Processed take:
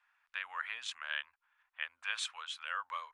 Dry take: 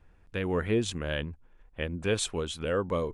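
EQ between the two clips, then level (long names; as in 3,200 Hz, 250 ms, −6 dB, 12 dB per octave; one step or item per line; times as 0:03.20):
inverse Chebyshev high-pass filter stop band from 420 Hz, stop band 50 dB
high-shelf EQ 5,000 Hz −11.5 dB
high-shelf EQ 10,000 Hz −9.5 dB
+1.0 dB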